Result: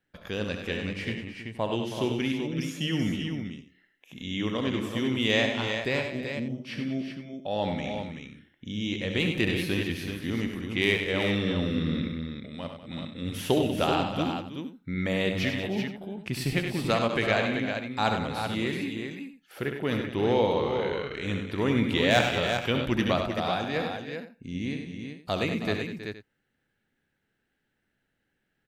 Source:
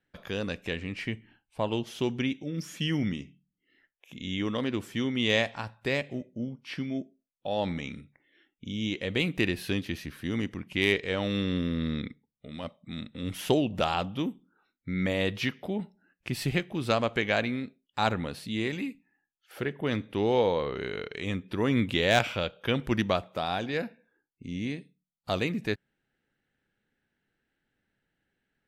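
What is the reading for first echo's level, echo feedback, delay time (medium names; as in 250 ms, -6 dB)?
-8.5 dB, no regular repeats, 68 ms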